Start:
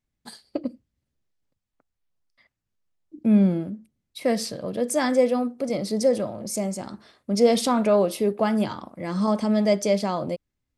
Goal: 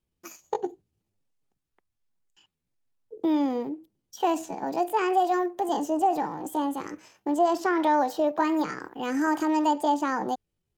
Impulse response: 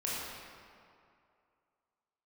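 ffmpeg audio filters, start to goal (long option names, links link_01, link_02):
-filter_complex "[0:a]acrossover=split=470|3900[link_01][link_02][link_03];[link_01]acompressor=threshold=-24dB:ratio=4[link_04];[link_02]acompressor=threshold=-24dB:ratio=4[link_05];[link_03]acompressor=threshold=-47dB:ratio=4[link_06];[link_04][link_05][link_06]amix=inputs=3:normalize=0,acrossover=split=1500[link_07][link_08];[link_08]alimiter=level_in=8dB:limit=-24dB:level=0:latency=1:release=224,volume=-8dB[link_09];[link_07][link_09]amix=inputs=2:normalize=0,asetrate=64194,aresample=44100,atempo=0.686977"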